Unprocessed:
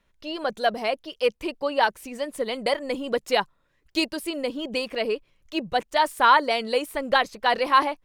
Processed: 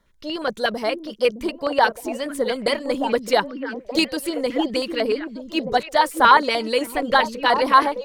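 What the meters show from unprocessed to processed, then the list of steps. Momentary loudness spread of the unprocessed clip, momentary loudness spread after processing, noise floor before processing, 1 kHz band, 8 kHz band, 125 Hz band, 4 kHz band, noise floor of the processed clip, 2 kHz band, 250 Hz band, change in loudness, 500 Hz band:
10 LU, 11 LU, -68 dBFS, +4.0 dB, +5.0 dB, n/a, +3.0 dB, -44 dBFS, +3.5 dB, +6.0 dB, +4.0 dB, +4.0 dB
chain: LFO notch square 8.4 Hz 720–2600 Hz; delay with a stepping band-pass 0.614 s, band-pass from 260 Hz, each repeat 1.4 oct, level -4 dB; gain +5 dB

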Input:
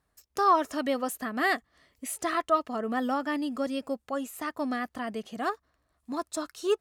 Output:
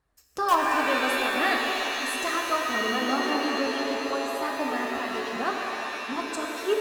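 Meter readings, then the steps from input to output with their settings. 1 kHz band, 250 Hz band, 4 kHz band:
+3.0 dB, +1.0 dB, +11.0 dB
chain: high shelf 6200 Hz -6.5 dB; harmonic-percussive split percussive +3 dB; in parallel at -10.5 dB: wrapped overs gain 12.5 dB; on the sum: flange 0.78 Hz, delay 2 ms, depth 5.9 ms, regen -39%; on a send: delay with a stepping band-pass 0.124 s, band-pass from 370 Hz, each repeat 0.7 oct, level -9 dB; on the sum: shimmer reverb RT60 3.1 s, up +7 st, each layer -2 dB, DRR 1.5 dB

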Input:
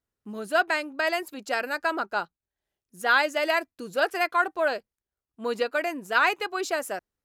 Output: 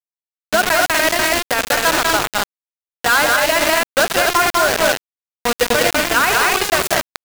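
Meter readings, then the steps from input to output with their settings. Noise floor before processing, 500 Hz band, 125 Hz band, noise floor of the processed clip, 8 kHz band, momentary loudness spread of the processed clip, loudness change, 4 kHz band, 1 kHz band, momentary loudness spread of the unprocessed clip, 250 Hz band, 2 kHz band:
under -85 dBFS, +9.5 dB, n/a, under -85 dBFS, +23.0 dB, 7 LU, +11.0 dB, +15.5 dB, +10.0 dB, 10 LU, +10.5 dB, +10.0 dB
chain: loudspeakers at several distances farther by 28 m -9 dB, 67 m -3 dB, 83 m -4 dB; bit-crush 4-bit; limiter -14 dBFS, peak gain reduction 8.5 dB; gain +8.5 dB

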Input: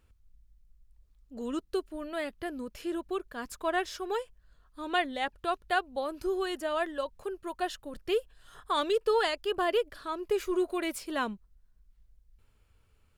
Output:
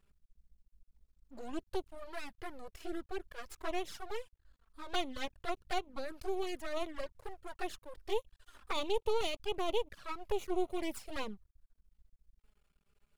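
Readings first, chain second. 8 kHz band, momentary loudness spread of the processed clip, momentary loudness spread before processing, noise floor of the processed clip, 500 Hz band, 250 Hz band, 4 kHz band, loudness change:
-5.0 dB, 13 LU, 10 LU, -82 dBFS, -7.5 dB, -7.5 dB, -5.0 dB, -7.5 dB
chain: half-wave rectifier; envelope flanger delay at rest 5.2 ms, full sweep at -29 dBFS

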